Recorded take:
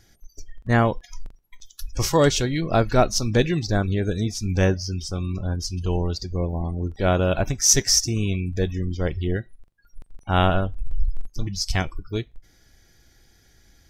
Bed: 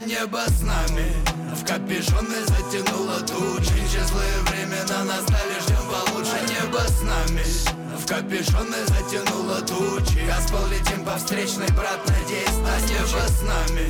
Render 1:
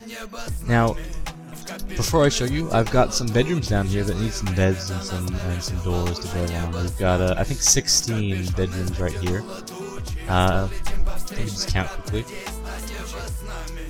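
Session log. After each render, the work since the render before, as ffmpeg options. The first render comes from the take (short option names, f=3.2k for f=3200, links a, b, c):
-filter_complex "[1:a]volume=-10dB[a];[0:a][a]amix=inputs=2:normalize=0"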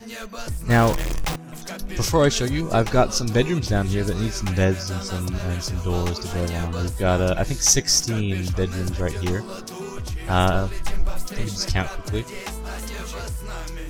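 -filter_complex "[0:a]asettb=1/sr,asplit=3[a][b][c];[a]atrim=end=0.704[d];[b]atrim=start=0.7:end=1.36,asetpts=PTS-STARTPTS,afade=t=in:d=0.004:c=qsin,afade=t=out:st=0.656:d=0.004:c=qsin,aeval=exprs='val(0)+0.5*0.0794*sgn(val(0))':c=same[e];[c]atrim=start=1.356[f];[d][e]acrossfade=d=0.004:c1=hsin:c2=qsin[g];[g][f]acrossfade=d=0.004:c1=qsin:c2=hsin"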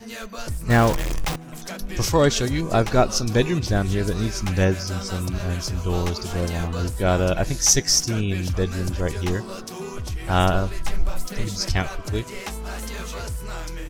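-filter_complex "[0:a]asplit=2[a][b];[b]adelay=151.6,volume=-29dB,highshelf=f=4k:g=-3.41[c];[a][c]amix=inputs=2:normalize=0"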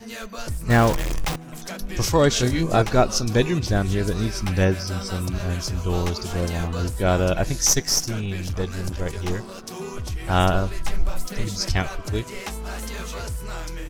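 -filter_complex "[0:a]asettb=1/sr,asplit=3[a][b][c];[a]atrim=end=2.304[d];[b]atrim=start=2.3:end=2.82,asetpts=PTS-STARTPTS,afade=t=in:d=0.004:c=qsin,afade=t=out:st=0.516:d=0.004:c=qsin,asplit=2[e][f];[f]adelay=24,volume=-4dB[g];[e][g]amix=inputs=2:normalize=0,atrim=end_sample=22932[h];[c]atrim=start=2.816[i];[d][h]acrossfade=d=0.004:c1=hsin:c2=qsin[j];[j][i]acrossfade=d=0.004:c1=qsin:c2=hsin,asettb=1/sr,asplit=3[k][l][m];[k]atrim=end=4.244[n];[l]atrim=start=4.24:end=5.24,asetpts=PTS-STARTPTS,afade=t=in:d=0.004:c=qsin,afade=t=out:st=0.996:d=0.004:c=qsin,bandreject=f=6.7k:w=7[o];[m]atrim=start=5.236[p];[n][o]acrossfade=d=0.004:c1=hsin:c2=qsin[q];[q][p]acrossfade=d=0.004:c1=qsin:c2=hsin,asettb=1/sr,asplit=3[r][s][t];[r]atrim=end=7.674[u];[s]atrim=start=7.67:end=9.67,asetpts=PTS-STARTPTS,afade=t=in:d=0.004:c=qsin,afade=t=out:st=1.996:d=0.004:c=qsin,aeval=exprs='if(lt(val(0),0),0.447*val(0),val(0))':c=same[v];[t]atrim=start=9.666[w];[u][v]acrossfade=d=0.004:c1=hsin:c2=qsin[x];[x][w]acrossfade=d=0.004:c1=qsin:c2=hsin"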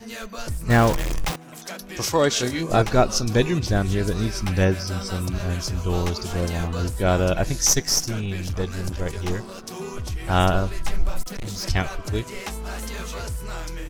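-filter_complex "[0:a]asettb=1/sr,asplit=3[a][b][c];[a]atrim=end=1.314[d];[b]atrim=start=1.31:end=2.7,asetpts=PTS-STARTPTS,afade=t=in:d=0.004:c=qsin,afade=t=out:st=1.386:d=0.004:c=qsin,highpass=f=290:p=1[e];[c]atrim=start=2.696[f];[d][e]acrossfade=d=0.004:c1=hsin:c2=qsin[g];[g][f]acrossfade=d=0.004:c1=qsin:c2=hsin,asettb=1/sr,asplit=3[h][i][j];[h]atrim=end=11.224[k];[i]atrim=start=11.22:end=11.64,asetpts=PTS-STARTPTS,afade=t=in:d=0.004:c=qsin,afade=t=out:st=0.416:d=0.004:c=qsin,volume=27.5dB,asoftclip=hard,volume=-27.5dB[l];[j]atrim=start=11.636[m];[k][l]acrossfade=d=0.004:c1=hsin:c2=qsin[n];[n][m]acrossfade=d=0.004:c1=qsin:c2=hsin"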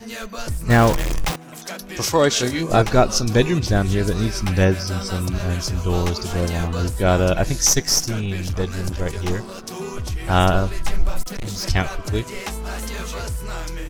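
-af "volume=3dB,alimiter=limit=-3dB:level=0:latency=1"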